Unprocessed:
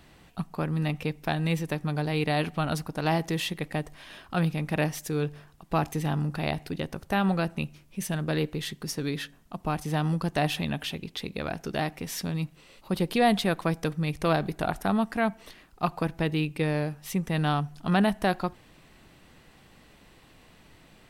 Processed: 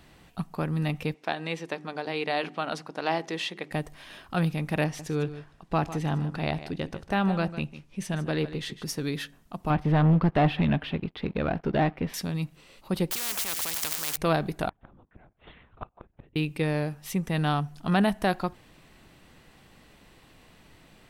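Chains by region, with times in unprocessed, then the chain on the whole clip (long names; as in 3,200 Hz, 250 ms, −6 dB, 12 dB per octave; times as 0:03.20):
0:01.14–0:03.71: band-pass filter 310–5,800 Hz + mains-hum notches 50/100/150/200/250/300/350/400 Hz
0:04.84–0:08.84: high-frequency loss of the air 52 metres + single-tap delay 151 ms −13.5 dB
0:09.70–0:12.14: leveller curve on the samples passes 3 + high-frequency loss of the air 400 metres + expander for the loud parts, over −32 dBFS
0:13.11–0:14.17: spike at every zero crossing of −27.5 dBFS + high-pass filter 290 Hz 6 dB per octave + every bin compressed towards the loudest bin 10 to 1
0:14.69–0:16.36: linear-prediction vocoder at 8 kHz whisper + gate with flip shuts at −24 dBFS, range −31 dB + high-frequency loss of the air 170 metres
whole clip: no processing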